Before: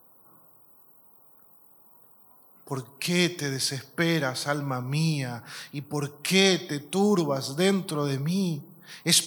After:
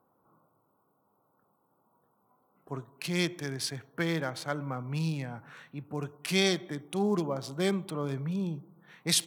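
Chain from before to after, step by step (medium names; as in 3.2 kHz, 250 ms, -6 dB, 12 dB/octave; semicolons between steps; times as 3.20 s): local Wiener filter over 9 samples; trim -5.5 dB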